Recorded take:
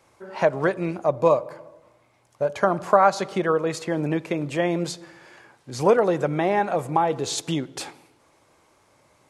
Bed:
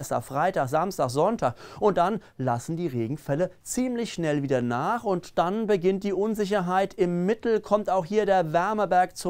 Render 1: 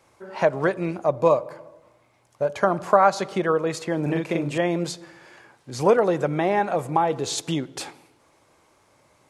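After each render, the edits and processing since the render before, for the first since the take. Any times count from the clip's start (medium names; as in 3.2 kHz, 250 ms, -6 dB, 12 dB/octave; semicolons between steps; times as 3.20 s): 4.02–4.58 s: doubling 42 ms -3 dB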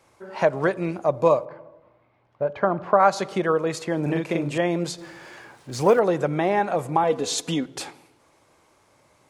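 1.45–3.00 s: distance through air 350 m; 4.98–5.99 s: companding laws mixed up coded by mu; 7.03–7.66 s: comb 4.1 ms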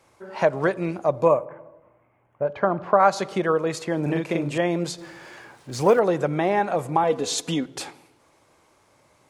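1.25–2.45 s: Butterworth band-stop 4.5 kHz, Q 0.99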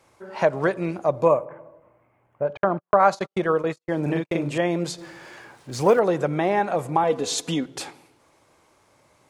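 2.57–4.34 s: gate -29 dBFS, range -55 dB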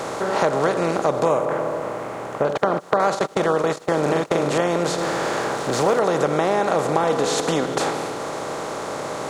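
spectral levelling over time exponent 0.4; compression 2:1, threshold -19 dBFS, peak gain reduction 6.5 dB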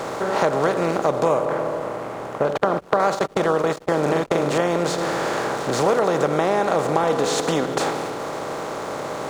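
hysteresis with a dead band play -37.5 dBFS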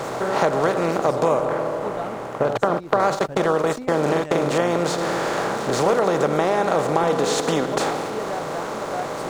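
add bed -9.5 dB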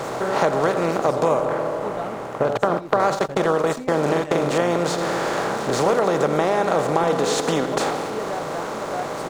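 delay 86 ms -18 dB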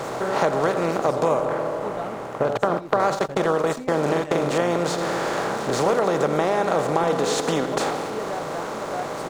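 trim -1.5 dB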